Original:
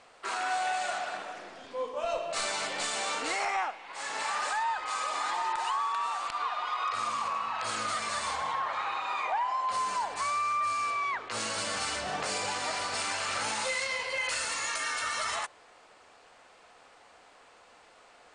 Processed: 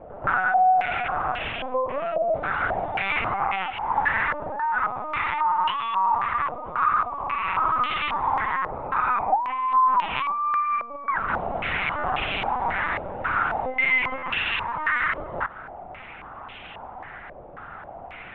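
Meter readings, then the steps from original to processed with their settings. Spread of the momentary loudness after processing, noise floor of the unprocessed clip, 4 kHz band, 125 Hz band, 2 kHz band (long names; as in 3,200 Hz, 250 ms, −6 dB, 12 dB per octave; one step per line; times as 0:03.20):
19 LU, −58 dBFS, −0.5 dB, +13.5 dB, +8.5 dB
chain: loose part that buzzes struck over −59 dBFS, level −42 dBFS
low-shelf EQ 170 Hz +2.5 dB
in parallel at −1.5 dB: brickwall limiter −29 dBFS, peak gain reduction 9 dB
on the sum: downward compressor 12 to 1, threshold −33 dBFS, peak gain reduction 10.5 dB
on a send: backwards echo 127 ms −10 dB
on the sum: linear-prediction vocoder at 8 kHz pitch kept
buffer that repeats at 0:11.98/0:14.17, samples 512, times 4
low-pass on a step sequencer 3.7 Hz 580–2,900 Hz
level +7 dB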